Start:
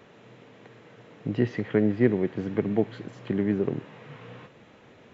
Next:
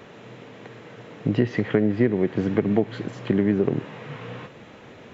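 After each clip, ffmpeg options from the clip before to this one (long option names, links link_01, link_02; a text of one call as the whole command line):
ffmpeg -i in.wav -af "acompressor=threshold=-24dB:ratio=5,volume=8dB" out.wav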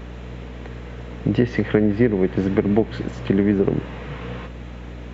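ffmpeg -i in.wav -af "aeval=exprs='val(0)+0.0141*(sin(2*PI*60*n/s)+sin(2*PI*2*60*n/s)/2+sin(2*PI*3*60*n/s)/3+sin(2*PI*4*60*n/s)/4+sin(2*PI*5*60*n/s)/5)':channel_layout=same,volume=3dB" out.wav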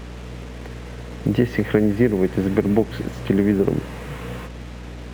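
ffmpeg -i in.wav -af "acrusher=bits=6:mix=0:aa=0.5" out.wav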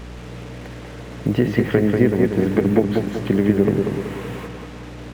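ffmpeg -i in.wav -filter_complex "[0:a]asplit=2[link_01][link_02];[link_02]adelay=190,lowpass=frequency=3500:poles=1,volume=-4dB,asplit=2[link_03][link_04];[link_04]adelay=190,lowpass=frequency=3500:poles=1,volume=0.47,asplit=2[link_05][link_06];[link_06]adelay=190,lowpass=frequency=3500:poles=1,volume=0.47,asplit=2[link_07][link_08];[link_08]adelay=190,lowpass=frequency=3500:poles=1,volume=0.47,asplit=2[link_09][link_10];[link_10]adelay=190,lowpass=frequency=3500:poles=1,volume=0.47,asplit=2[link_11][link_12];[link_12]adelay=190,lowpass=frequency=3500:poles=1,volume=0.47[link_13];[link_01][link_03][link_05][link_07][link_09][link_11][link_13]amix=inputs=7:normalize=0" out.wav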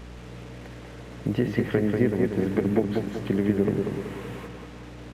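ffmpeg -i in.wav -af "aresample=32000,aresample=44100,volume=-6.5dB" out.wav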